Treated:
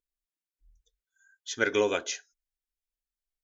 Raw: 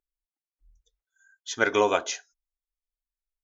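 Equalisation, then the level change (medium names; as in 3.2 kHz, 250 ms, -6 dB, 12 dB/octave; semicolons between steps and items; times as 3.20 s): high-order bell 890 Hz -8.5 dB 1.2 oct; -2.0 dB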